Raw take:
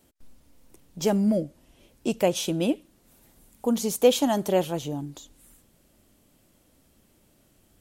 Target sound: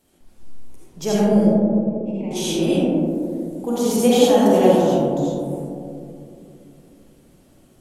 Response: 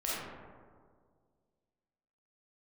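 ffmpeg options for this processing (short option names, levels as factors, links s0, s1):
-filter_complex "[0:a]asettb=1/sr,asplit=3[s0][s1][s2];[s0]atrim=end=1.424[s3];[s1]atrim=start=1.42:end=2.31,asetpts=PTS-STARTPTS,afade=t=in:d=0.004:c=qsin,afade=t=out:st=0.886:d=0.004:c=qsin,asplit=3[s4][s5][s6];[s4]bandpass=f=300:t=q:w=8,volume=1[s7];[s5]bandpass=f=870:t=q:w=8,volume=0.501[s8];[s6]bandpass=f=2240:t=q:w=8,volume=0.355[s9];[s7][s8][s9]amix=inputs=3:normalize=0[s10];[s2]atrim=start=2.306[s11];[s3][s10]acrossfade=d=0.004:c1=hsin:c2=qsin[s12];[s12][s11]acrossfade=d=0.004:c1=qsin:c2=hsin[s13];[1:a]atrim=start_sample=2205,asetrate=25578,aresample=44100[s14];[s13][s14]afir=irnorm=-1:irlink=0,volume=0.794"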